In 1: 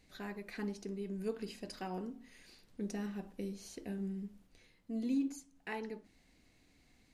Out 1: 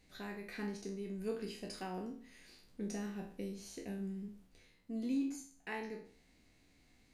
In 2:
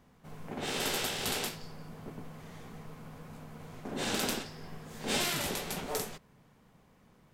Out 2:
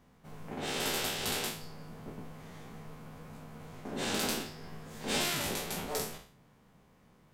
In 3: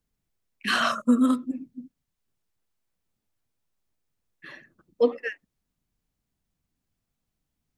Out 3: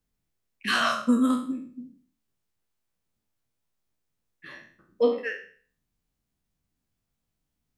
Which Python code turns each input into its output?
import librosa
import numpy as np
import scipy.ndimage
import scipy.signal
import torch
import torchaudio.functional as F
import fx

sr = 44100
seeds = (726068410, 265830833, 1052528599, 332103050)

y = fx.spec_trails(x, sr, decay_s=0.47)
y = y * 10.0 ** (-2.0 / 20.0)